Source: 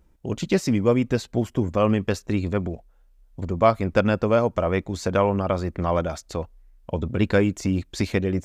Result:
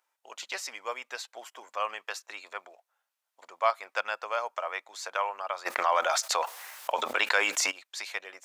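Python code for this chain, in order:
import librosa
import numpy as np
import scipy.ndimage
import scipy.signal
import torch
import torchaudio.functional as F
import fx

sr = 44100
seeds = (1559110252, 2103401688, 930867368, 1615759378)

y = scipy.signal.sosfilt(scipy.signal.butter(4, 790.0, 'highpass', fs=sr, output='sos'), x)
y = fx.env_flatten(y, sr, amount_pct=70, at=(5.65, 7.7), fade=0.02)
y = y * 10.0 ** (-3.0 / 20.0)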